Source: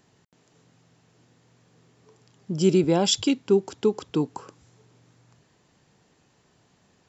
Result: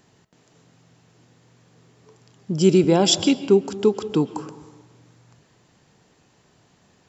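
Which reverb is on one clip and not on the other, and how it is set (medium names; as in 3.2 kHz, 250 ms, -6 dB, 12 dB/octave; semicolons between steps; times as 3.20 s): algorithmic reverb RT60 1.2 s, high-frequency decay 0.45×, pre-delay 95 ms, DRR 14 dB; trim +4 dB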